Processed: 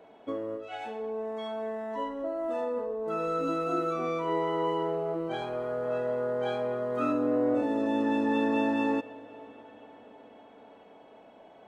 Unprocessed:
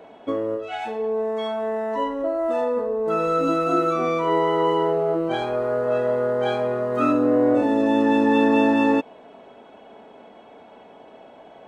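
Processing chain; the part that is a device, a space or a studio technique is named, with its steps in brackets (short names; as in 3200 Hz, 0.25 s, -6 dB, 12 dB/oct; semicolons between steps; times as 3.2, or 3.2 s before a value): darkening echo 0.255 s, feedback 79%, low-pass 4000 Hz, level -22 dB; compressed reverb return (on a send at -6 dB: reverb RT60 1.7 s, pre-delay 31 ms + compressor, threshold -34 dBFS, peak gain reduction 18.5 dB); on the sum: gain -9 dB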